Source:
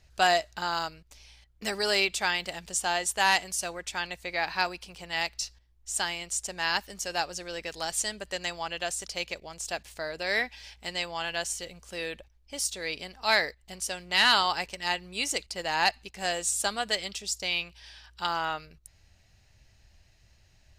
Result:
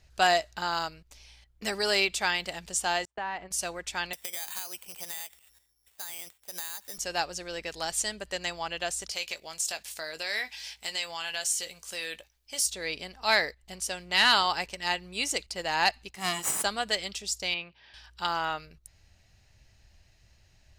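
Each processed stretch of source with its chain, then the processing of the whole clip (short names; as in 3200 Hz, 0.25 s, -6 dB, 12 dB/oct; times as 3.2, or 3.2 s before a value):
3.05–3.51 LPF 1600 Hz + gate -45 dBFS, range -31 dB + compressor 3:1, threshold -32 dBFS
4.13–6.98 HPF 420 Hz 6 dB/oct + compressor 12:1, threshold -40 dBFS + careless resampling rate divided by 8×, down filtered, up zero stuff
9.11–12.66 compressor 2:1, threshold -35 dBFS + tilt +3 dB/oct + doubler 19 ms -11 dB
16.15–16.64 minimum comb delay 1 ms + HPF 130 Hz + bell 11000 Hz +9 dB 0.28 oct
17.54–17.94 HPF 140 Hz + air absorption 320 m
whole clip: dry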